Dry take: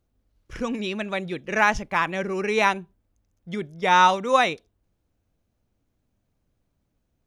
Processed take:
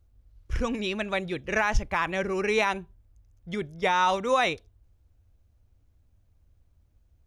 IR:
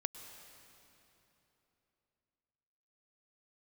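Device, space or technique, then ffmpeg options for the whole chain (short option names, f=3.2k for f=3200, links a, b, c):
car stereo with a boomy subwoofer: -af "lowshelf=f=120:t=q:w=1.5:g=11.5,alimiter=limit=-13.5dB:level=0:latency=1:release=58"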